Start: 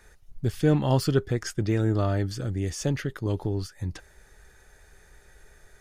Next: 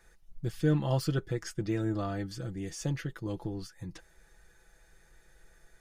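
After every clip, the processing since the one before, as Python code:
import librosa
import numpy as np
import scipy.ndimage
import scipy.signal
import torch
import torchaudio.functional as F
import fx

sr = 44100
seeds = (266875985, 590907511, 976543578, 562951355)

y = x + 0.65 * np.pad(x, (int(6.0 * sr / 1000.0), 0))[:len(x)]
y = y * 10.0 ** (-8.0 / 20.0)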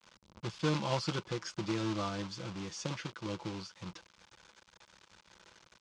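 y = fx.quant_companded(x, sr, bits=4)
y = fx.cabinet(y, sr, low_hz=140.0, low_slope=12, high_hz=6100.0, hz=(140.0, 280.0, 420.0, 710.0, 1000.0, 1800.0), db=(-8, -8, -7, -7, 4, -8))
y = y * 10.0 ** (1.5 / 20.0)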